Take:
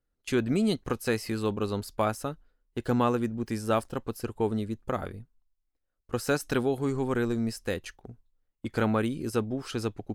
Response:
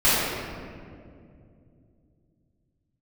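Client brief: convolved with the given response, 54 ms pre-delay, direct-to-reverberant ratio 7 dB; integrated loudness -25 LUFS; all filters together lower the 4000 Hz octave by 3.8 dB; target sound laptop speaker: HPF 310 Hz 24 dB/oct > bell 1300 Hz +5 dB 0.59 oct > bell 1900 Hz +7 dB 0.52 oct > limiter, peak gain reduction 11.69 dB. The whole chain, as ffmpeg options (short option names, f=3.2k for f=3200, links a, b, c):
-filter_complex "[0:a]equalizer=f=4k:t=o:g=-6,asplit=2[a][b];[1:a]atrim=start_sample=2205,adelay=54[c];[b][c]afir=irnorm=-1:irlink=0,volume=-27.5dB[d];[a][d]amix=inputs=2:normalize=0,highpass=f=310:w=0.5412,highpass=f=310:w=1.3066,equalizer=f=1.3k:t=o:w=0.59:g=5,equalizer=f=1.9k:t=o:w=0.52:g=7,volume=9.5dB,alimiter=limit=-13.5dB:level=0:latency=1"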